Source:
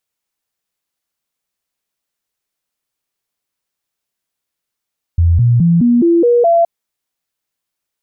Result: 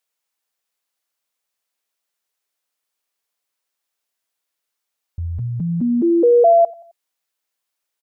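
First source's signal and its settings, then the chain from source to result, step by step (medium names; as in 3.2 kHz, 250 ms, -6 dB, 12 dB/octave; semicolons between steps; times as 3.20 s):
stepped sine 84.7 Hz up, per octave 2, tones 7, 0.21 s, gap 0.00 s -7 dBFS
tone controls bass -14 dB, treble 0 dB; band-stop 370 Hz, Q 12; feedback delay 88 ms, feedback 43%, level -21 dB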